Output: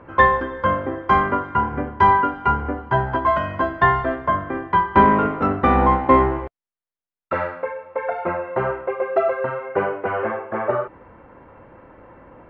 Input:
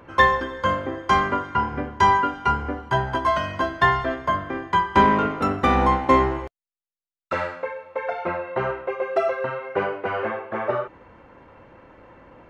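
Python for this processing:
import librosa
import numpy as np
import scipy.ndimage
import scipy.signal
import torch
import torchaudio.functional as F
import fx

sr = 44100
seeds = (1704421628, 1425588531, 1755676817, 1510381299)

y = scipy.signal.sosfilt(scipy.signal.butter(2, 1900.0, 'lowpass', fs=sr, output='sos'), x)
y = F.gain(torch.from_numpy(y), 3.0).numpy()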